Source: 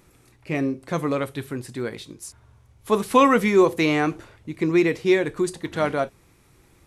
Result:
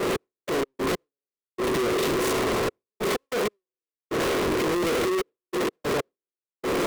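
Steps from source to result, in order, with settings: per-bin compression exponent 0.4; high shelf 4300 Hz -9 dB; narrowing echo 75 ms, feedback 61%, band-pass 330 Hz, level -16 dB; sample leveller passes 5; hard clip -23.5 dBFS, distortion -7 dB; step gate "x..x.x....xxxxxx" 95 bpm -60 dB; gate with hold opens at -24 dBFS; bell 430 Hz +11.5 dB 0.93 oct; soft clip -31.5 dBFS, distortion -6 dB; three-band expander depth 100%; gain +8 dB

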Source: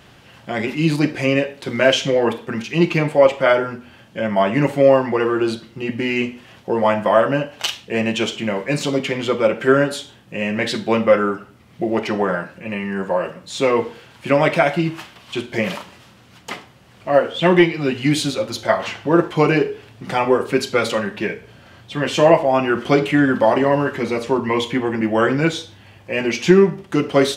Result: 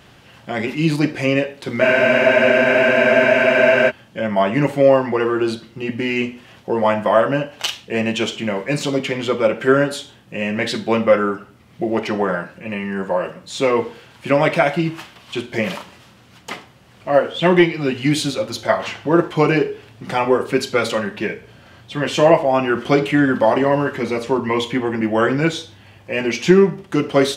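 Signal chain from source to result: spectral freeze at 1.83, 2.06 s

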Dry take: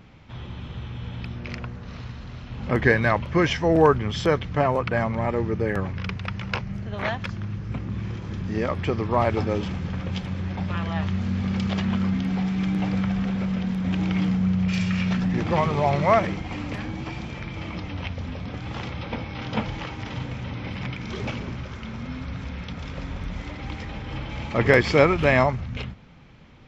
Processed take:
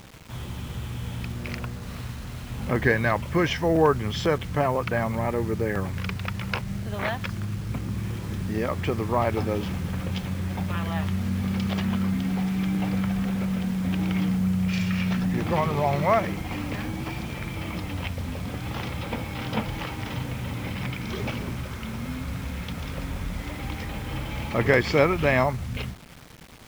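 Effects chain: in parallel at -1 dB: compressor 8:1, threshold -29 dBFS, peak gain reduction 17 dB; on the sum: bit-crush 7-bit; gain -4 dB

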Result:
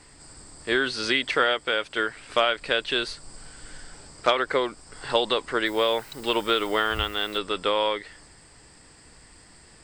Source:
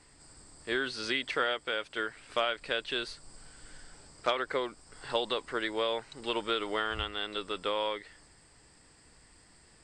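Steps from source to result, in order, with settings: 5.65–7.37 added noise blue -59 dBFS; gain +8 dB

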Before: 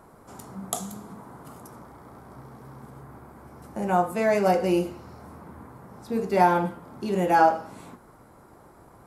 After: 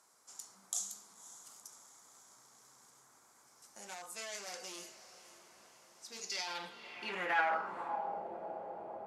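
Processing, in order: spectral gain 6.12–6.47, 1900–7000 Hz +9 dB; limiter -16.5 dBFS, peak gain reduction 10 dB; hard clip -23.5 dBFS, distortion -12 dB; diffused feedback echo 0.556 s, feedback 63%, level -15 dB; band-pass sweep 6300 Hz -> 630 Hz, 6.24–8.28; gain +6 dB

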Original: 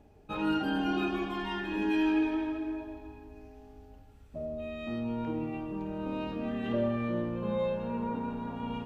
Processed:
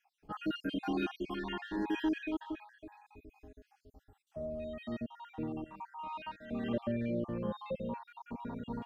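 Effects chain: random spectral dropouts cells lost 55%; 5.64–6.51 resonant low shelf 640 Hz -13.5 dB, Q 3; gain -2.5 dB

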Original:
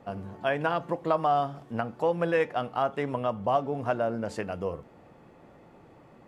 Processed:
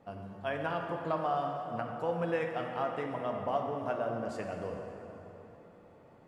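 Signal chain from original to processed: plate-style reverb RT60 3.6 s, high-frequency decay 0.65×, DRR 2 dB; gain -8 dB

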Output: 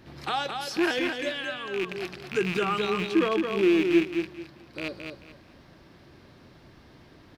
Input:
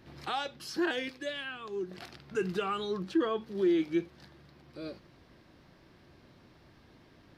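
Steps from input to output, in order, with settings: rattling part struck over -44 dBFS, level -26 dBFS; on a send: feedback echo 0.218 s, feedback 25%, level -5.5 dB; on the sum: gain +5 dB

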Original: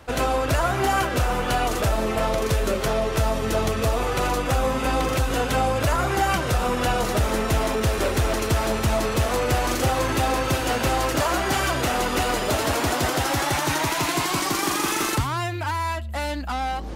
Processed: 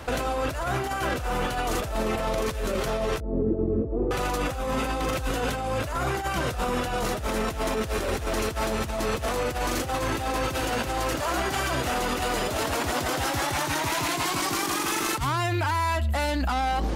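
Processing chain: negative-ratio compressor -26 dBFS, ratio -0.5; limiter -21.5 dBFS, peak gain reduction 9.5 dB; 3.2–4.11 synth low-pass 350 Hz, resonance Q 4.1; gain +3.5 dB

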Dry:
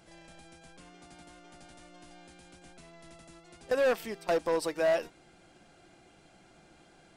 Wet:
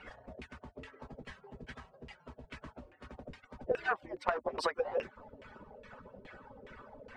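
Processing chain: median-filter separation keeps percussive; high shelf 2000 Hz +9 dB; LFO low-pass saw down 2.4 Hz 430–2300 Hz; compressor 16:1, threshold -39 dBFS, peak gain reduction 16.5 dB; gain +10.5 dB

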